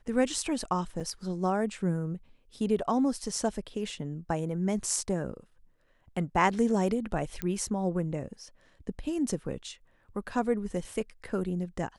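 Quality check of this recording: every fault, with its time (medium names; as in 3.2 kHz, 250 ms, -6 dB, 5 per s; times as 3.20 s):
1.00 s: dropout 4.4 ms
7.42 s: pop -17 dBFS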